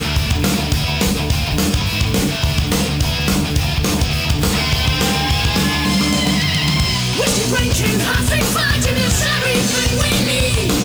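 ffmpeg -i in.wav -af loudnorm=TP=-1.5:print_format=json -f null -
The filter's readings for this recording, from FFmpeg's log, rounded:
"input_i" : "-15.9",
"input_tp" : "-1.7",
"input_lra" : "1.7",
"input_thresh" : "-25.9",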